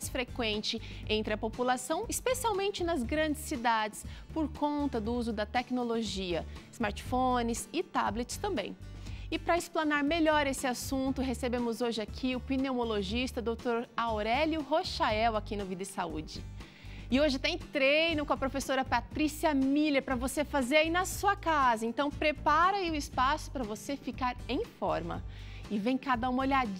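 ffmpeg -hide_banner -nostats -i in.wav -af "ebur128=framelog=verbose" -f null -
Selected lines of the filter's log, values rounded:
Integrated loudness:
  I:         -31.4 LUFS
  Threshold: -41.6 LUFS
Loudness range:
  LRA:         4.3 LU
  Threshold: -51.5 LUFS
  LRA low:   -33.4 LUFS
  LRA high:  -29.1 LUFS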